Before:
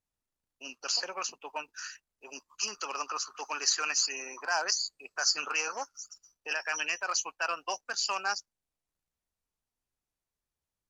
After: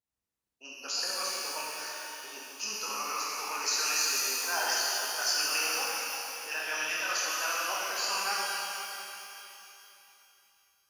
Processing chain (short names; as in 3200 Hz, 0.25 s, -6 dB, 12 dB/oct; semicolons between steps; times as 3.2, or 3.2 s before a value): regenerating reverse delay 0.23 s, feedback 60%, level -12 dB; HPF 55 Hz; shimmer reverb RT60 2.8 s, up +12 st, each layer -8 dB, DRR -6 dB; gain -6 dB